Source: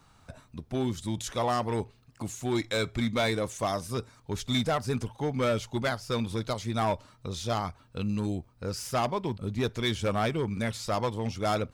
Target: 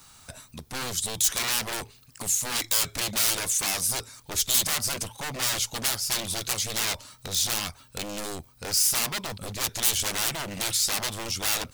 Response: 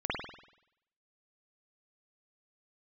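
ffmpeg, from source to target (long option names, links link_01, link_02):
-af "aeval=exprs='0.0266*(abs(mod(val(0)/0.0266+3,4)-2)-1)':channel_layout=same,crystalizer=i=7:c=0"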